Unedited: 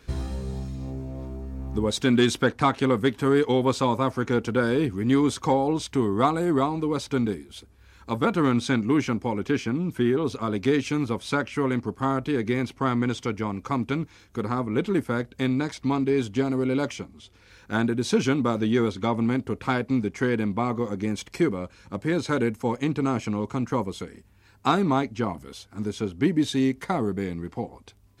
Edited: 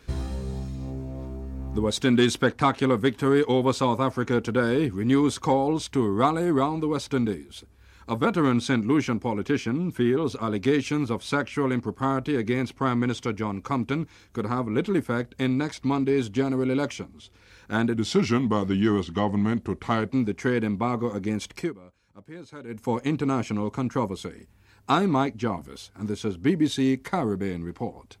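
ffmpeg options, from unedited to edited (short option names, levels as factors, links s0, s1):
-filter_complex "[0:a]asplit=5[s0][s1][s2][s3][s4];[s0]atrim=end=17.964[s5];[s1]atrim=start=17.96:end=19.86,asetpts=PTS-STARTPTS,asetrate=39249,aresample=44100,atrim=end_sample=94146,asetpts=PTS-STARTPTS[s6];[s2]atrim=start=19.856:end=21.5,asetpts=PTS-STARTPTS,afade=t=out:st=1.464:d=0.18:silence=0.141254[s7];[s3]atrim=start=21.5:end=22.44,asetpts=PTS-STARTPTS,volume=0.141[s8];[s4]atrim=start=22.44,asetpts=PTS-STARTPTS,afade=t=in:d=0.18:silence=0.141254[s9];[s5][s6]acrossfade=d=0.004:c1=hsin:c2=hsin[s10];[s7][s8][s9]concat=n=3:v=0:a=1[s11];[s10][s11]acrossfade=d=0.004:c1=hsin:c2=hsin"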